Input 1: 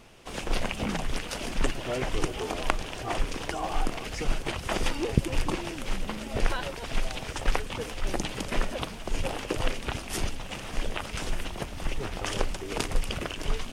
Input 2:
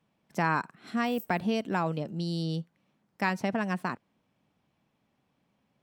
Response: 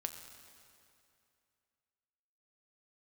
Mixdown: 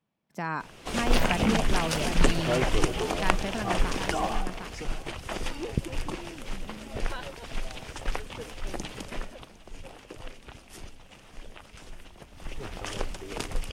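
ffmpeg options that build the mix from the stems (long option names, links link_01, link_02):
-filter_complex "[0:a]adelay=600,volume=9dB,afade=type=out:start_time=4.19:duration=0.25:silence=0.316228,afade=type=out:start_time=8.98:duration=0.45:silence=0.354813,afade=type=in:start_time=12.28:duration=0.4:silence=0.316228,asplit=2[link_01][link_02];[link_02]volume=-22dB[link_03];[1:a]volume=-7.5dB,asplit=2[link_04][link_05];[link_05]volume=-9dB[link_06];[link_03][link_06]amix=inputs=2:normalize=0,aecho=0:1:757:1[link_07];[link_01][link_04][link_07]amix=inputs=3:normalize=0,dynaudnorm=framelen=230:gausssize=5:maxgain=6dB"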